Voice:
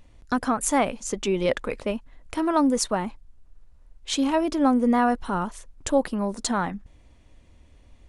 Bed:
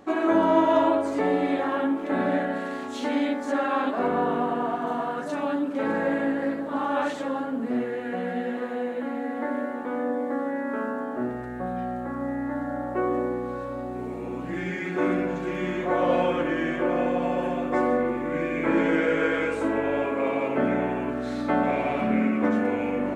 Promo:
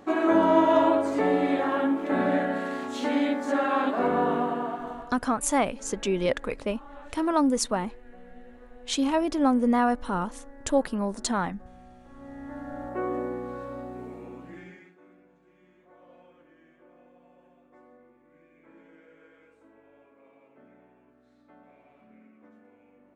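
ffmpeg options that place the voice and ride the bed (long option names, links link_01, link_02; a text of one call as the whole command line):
ffmpeg -i stem1.wav -i stem2.wav -filter_complex "[0:a]adelay=4800,volume=-2dB[link_01];[1:a]volume=16.5dB,afade=type=out:start_time=4.31:duration=0.85:silence=0.0891251,afade=type=in:start_time=12.08:duration=0.94:silence=0.149624,afade=type=out:start_time=13.76:duration=1.2:silence=0.0398107[link_02];[link_01][link_02]amix=inputs=2:normalize=0" out.wav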